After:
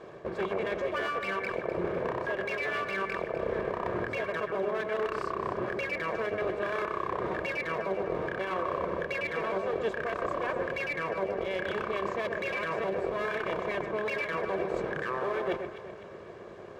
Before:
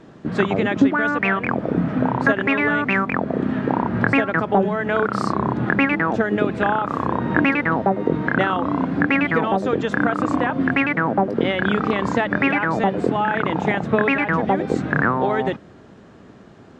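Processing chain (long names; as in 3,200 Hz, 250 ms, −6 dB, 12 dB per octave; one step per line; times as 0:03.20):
lower of the sound and its delayed copy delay 1.8 ms
brickwall limiter −13.5 dBFS, peak gain reduction 10.5 dB
bass and treble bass −9 dB, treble 0 dB
hollow resonant body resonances 360/2,300 Hz, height 7 dB, ringing for 35 ms
reversed playback
downward compressor 10 to 1, threshold −30 dBFS, peak gain reduction 14 dB
reversed playback
high-pass filter 56 Hz
high-shelf EQ 2,600 Hz −8.5 dB
mains-hum notches 60/120 Hz
delay that swaps between a low-pass and a high-pass 126 ms, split 2,200 Hz, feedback 63%, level −6.5 dB
level +2 dB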